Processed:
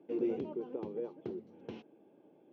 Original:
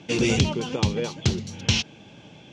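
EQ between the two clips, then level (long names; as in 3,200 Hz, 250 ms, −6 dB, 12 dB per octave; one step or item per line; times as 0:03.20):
four-pole ladder band-pass 420 Hz, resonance 45%
−1.5 dB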